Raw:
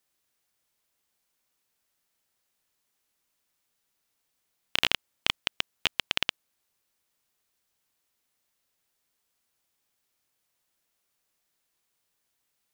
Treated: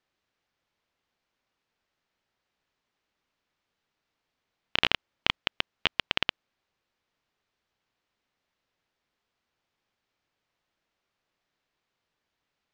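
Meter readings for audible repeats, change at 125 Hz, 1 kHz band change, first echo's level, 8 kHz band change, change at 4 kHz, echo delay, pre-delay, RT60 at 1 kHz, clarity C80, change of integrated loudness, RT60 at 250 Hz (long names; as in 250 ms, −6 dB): no echo audible, +3.5 dB, +2.5 dB, no echo audible, −10.5 dB, −0.5 dB, no echo audible, no reverb audible, no reverb audible, no reverb audible, 0.0 dB, no reverb audible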